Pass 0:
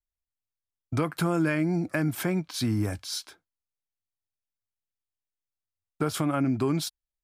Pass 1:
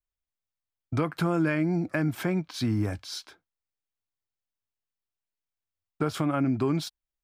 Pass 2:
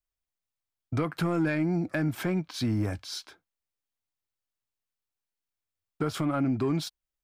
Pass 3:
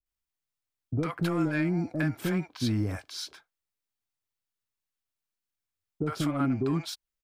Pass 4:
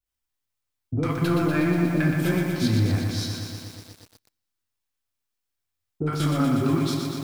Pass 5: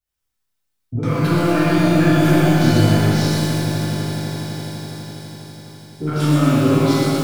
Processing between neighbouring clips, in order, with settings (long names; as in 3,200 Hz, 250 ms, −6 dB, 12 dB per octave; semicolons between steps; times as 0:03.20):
parametric band 11,000 Hz −10 dB 1.4 octaves
soft clipping −17.5 dBFS, distortion −19 dB
multiband delay without the direct sound lows, highs 60 ms, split 610 Hz
on a send at −4.5 dB: convolution reverb, pre-delay 3 ms; on the sum: feedback echo at a low word length 121 ms, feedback 80%, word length 8 bits, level −5 dB; level +2.5 dB
echo that builds up and dies away 83 ms, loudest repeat 8, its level −15.5 dB; reverb with rising layers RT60 1.3 s, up +12 semitones, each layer −8 dB, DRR −6 dB; level −1.5 dB